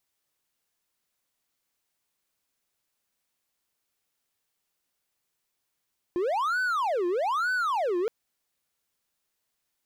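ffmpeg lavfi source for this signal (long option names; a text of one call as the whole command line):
ffmpeg -f lavfi -i "aevalsrc='0.0794*(1-4*abs(mod((929*t-581/(2*PI*1.1)*sin(2*PI*1.1*t))+0.25,1)-0.5))':duration=1.92:sample_rate=44100" out.wav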